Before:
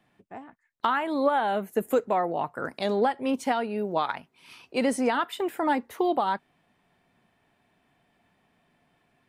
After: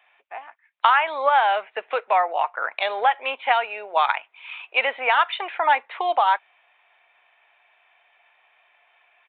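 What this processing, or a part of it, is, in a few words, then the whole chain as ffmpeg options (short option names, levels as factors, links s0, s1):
musical greeting card: -af "aresample=8000,aresample=44100,highpass=f=690:w=0.5412,highpass=f=690:w=1.3066,equalizer=f=2400:t=o:w=0.39:g=8,volume=2.66"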